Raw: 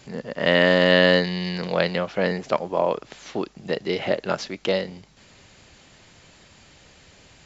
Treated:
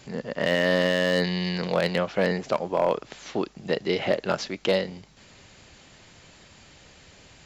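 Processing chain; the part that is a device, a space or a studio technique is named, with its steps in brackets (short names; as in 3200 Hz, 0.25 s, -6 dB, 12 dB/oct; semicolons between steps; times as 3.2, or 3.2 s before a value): limiter into clipper (limiter -9.5 dBFS, peak gain reduction 8 dB; hard clip -13 dBFS, distortion -20 dB)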